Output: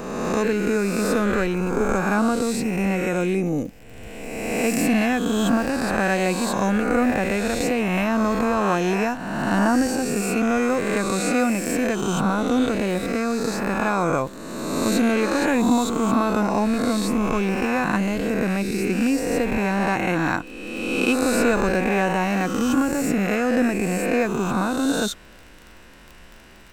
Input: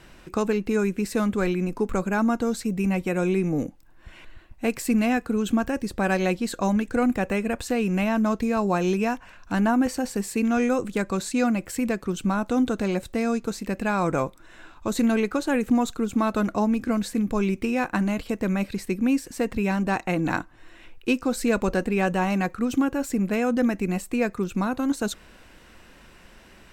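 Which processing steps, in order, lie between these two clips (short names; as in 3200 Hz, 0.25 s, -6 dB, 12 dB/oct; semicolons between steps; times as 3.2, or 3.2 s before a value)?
spectral swells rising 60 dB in 1.70 s; crackle 38/s -33 dBFS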